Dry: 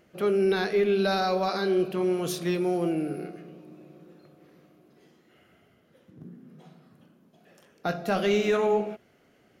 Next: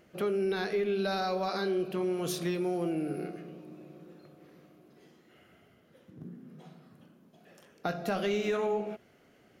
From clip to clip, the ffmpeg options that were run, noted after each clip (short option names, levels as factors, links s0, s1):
-af "acompressor=threshold=0.0316:ratio=2.5"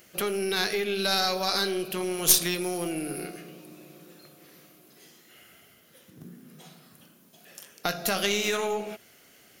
-af "crystalizer=i=9:c=0,aeval=exprs='0.562*(cos(1*acos(clip(val(0)/0.562,-1,1)))-cos(1*PI/2))+0.0631*(cos(3*acos(clip(val(0)/0.562,-1,1)))-cos(3*PI/2))+0.0631*(cos(4*acos(clip(val(0)/0.562,-1,1)))-cos(4*PI/2))+0.0282*(cos(6*acos(clip(val(0)/0.562,-1,1)))-cos(6*PI/2))+0.0126*(cos(8*acos(clip(val(0)/0.562,-1,1)))-cos(8*PI/2))':c=same,volume=1.33"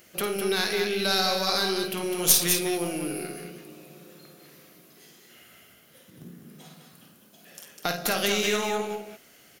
-af "aecho=1:1:52.48|204.1:0.398|0.501"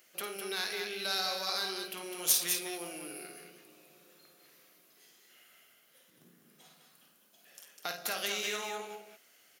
-af "highpass=f=730:p=1,volume=0.422"